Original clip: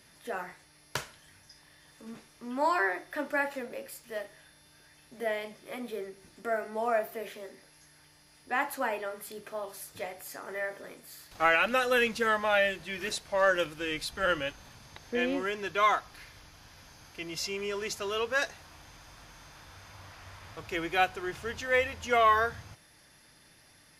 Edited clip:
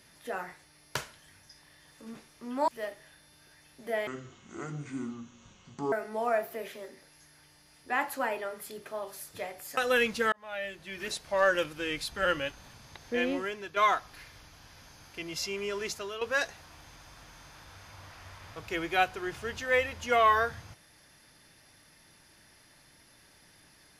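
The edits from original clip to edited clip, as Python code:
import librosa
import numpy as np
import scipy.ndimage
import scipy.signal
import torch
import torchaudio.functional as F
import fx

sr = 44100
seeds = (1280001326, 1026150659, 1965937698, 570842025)

y = fx.edit(x, sr, fx.cut(start_s=2.68, length_s=1.33),
    fx.speed_span(start_s=5.4, length_s=1.13, speed=0.61),
    fx.cut(start_s=10.38, length_s=1.4),
    fx.fade_in_span(start_s=12.33, length_s=0.96),
    fx.fade_out_to(start_s=15.31, length_s=0.46, floor_db=-9.0),
    fx.fade_out_to(start_s=17.89, length_s=0.33, floor_db=-10.5), tone=tone)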